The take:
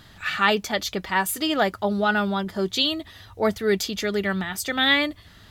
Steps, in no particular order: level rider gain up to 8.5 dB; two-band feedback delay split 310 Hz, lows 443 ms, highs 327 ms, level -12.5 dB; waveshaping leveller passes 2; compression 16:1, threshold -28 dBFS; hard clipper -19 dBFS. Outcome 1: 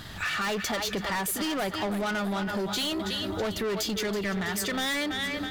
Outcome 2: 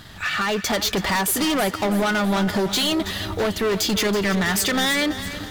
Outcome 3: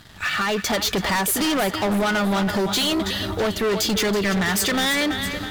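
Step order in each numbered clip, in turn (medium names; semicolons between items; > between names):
two-band feedback delay > hard clipper > waveshaping leveller > level rider > compression; compression > waveshaping leveller > level rider > hard clipper > two-band feedback delay; compression > level rider > two-band feedback delay > waveshaping leveller > hard clipper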